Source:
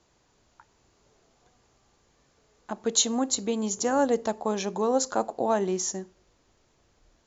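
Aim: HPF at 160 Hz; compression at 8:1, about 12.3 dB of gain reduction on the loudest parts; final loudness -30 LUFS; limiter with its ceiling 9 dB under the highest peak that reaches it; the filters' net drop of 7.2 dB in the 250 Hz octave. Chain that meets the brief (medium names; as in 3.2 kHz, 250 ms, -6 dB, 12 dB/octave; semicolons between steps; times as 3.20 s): high-pass 160 Hz; peaking EQ 250 Hz -7.5 dB; compression 8:1, threshold -30 dBFS; trim +8.5 dB; peak limiter -19.5 dBFS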